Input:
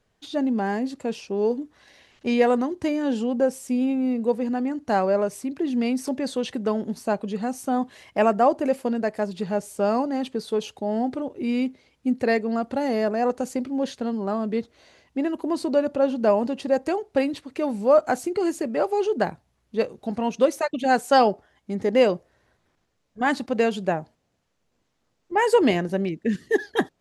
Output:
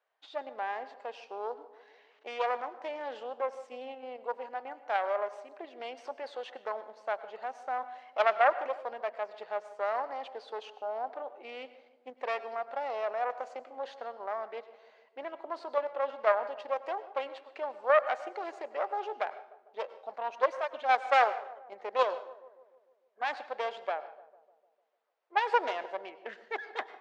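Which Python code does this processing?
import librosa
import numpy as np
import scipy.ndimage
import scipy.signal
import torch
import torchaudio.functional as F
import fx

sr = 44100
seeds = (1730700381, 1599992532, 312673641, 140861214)

p1 = fx.self_delay(x, sr, depth_ms=0.3)
p2 = scipy.signal.sosfilt(scipy.signal.butter(4, 640.0, 'highpass', fs=sr, output='sos'), p1)
p3 = fx.high_shelf(p2, sr, hz=3400.0, db=2.5)
p4 = fx.level_steps(p3, sr, step_db=21)
p5 = p3 + F.gain(torch.from_numpy(p4), -1.0).numpy()
p6 = fx.spacing_loss(p5, sr, db_at_10k=37)
p7 = p6 + fx.echo_filtered(p6, sr, ms=150, feedback_pct=63, hz=1100.0, wet_db=-16, dry=0)
p8 = fx.rev_plate(p7, sr, seeds[0], rt60_s=0.58, hf_ratio=0.9, predelay_ms=85, drr_db=15.5)
y = F.gain(torch.from_numpy(p8), -3.5).numpy()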